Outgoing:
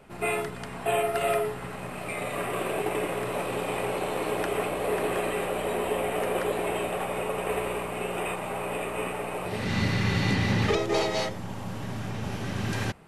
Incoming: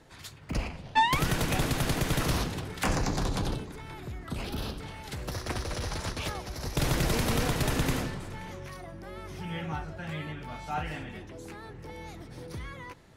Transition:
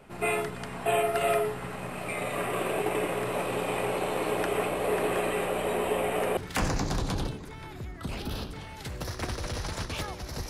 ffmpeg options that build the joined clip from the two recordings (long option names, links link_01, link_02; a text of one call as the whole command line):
ffmpeg -i cue0.wav -i cue1.wav -filter_complex "[0:a]apad=whole_dur=10.49,atrim=end=10.49,atrim=end=6.372[link_01];[1:a]atrim=start=2.638:end=6.76[link_02];[link_01][link_02]acrossfade=duration=0.004:curve1=hsin:curve2=hsin" out.wav